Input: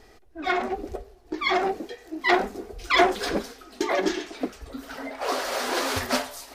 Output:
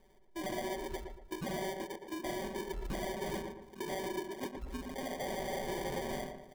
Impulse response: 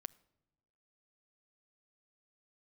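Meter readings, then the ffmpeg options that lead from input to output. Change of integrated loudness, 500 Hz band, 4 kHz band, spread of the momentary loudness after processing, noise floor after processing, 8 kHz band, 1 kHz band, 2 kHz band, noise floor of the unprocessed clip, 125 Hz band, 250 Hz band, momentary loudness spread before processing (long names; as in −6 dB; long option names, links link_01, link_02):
−13.5 dB, −11.0 dB, −15.5 dB, 6 LU, −60 dBFS, −11.0 dB, −15.0 dB, −17.5 dB, −53 dBFS, −3.0 dB, −10.0 dB, 15 LU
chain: -filter_complex "[0:a]afwtdn=0.0251,lowpass=frequency=2200:poles=1,aecho=1:1:5.3:0.99,alimiter=limit=-14.5dB:level=0:latency=1:release=97,acompressor=threshold=-35dB:ratio=6,aresample=11025,asoftclip=type=tanh:threshold=-35.5dB,aresample=44100,acrusher=samples=33:mix=1:aa=0.000001,asplit=2[link_01][link_02];[link_02]adelay=116,lowpass=frequency=1700:poles=1,volume=-5dB,asplit=2[link_03][link_04];[link_04]adelay=116,lowpass=frequency=1700:poles=1,volume=0.4,asplit=2[link_05][link_06];[link_06]adelay=116,lowpass=frequency=1700:poles=1,volume=0.4,asplit=2[link_07][link_08];[link_08]adelay=116,lowpass=frequency=1700:poles=1,volume=0.4,asplit=2[link_09][link_10];[link_10]adelay=116,lowpass=frequency=1700:poles=1,volume=0.4[link_11];[link_01][link_03][link_05][link_07][link_09][link_11]amix=inputs=6:normalize=0,volume=1.5dB"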